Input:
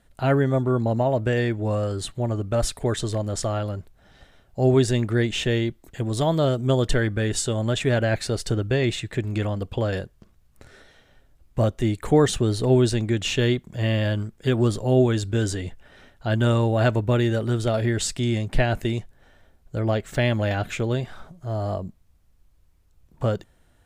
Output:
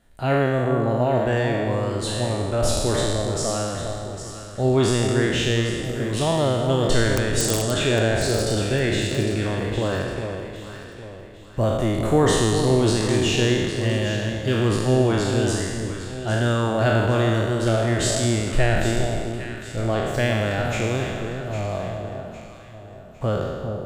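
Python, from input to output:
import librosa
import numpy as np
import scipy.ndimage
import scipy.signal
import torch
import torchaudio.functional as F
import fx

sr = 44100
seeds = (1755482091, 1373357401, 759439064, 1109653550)

y = fx.spec_trails(x, sr, decay_s=1.66)
y = fx.overflow_wrap(y, sr, gain_db=10.0, at=(7.13, 7.71))
y = fx.echo_alternate(y, sr, ms=403, hz=1000.0, feedback_pct=61, wet_db=-6.0)
y = y * 10.0 ** (-2.0 / 20.0)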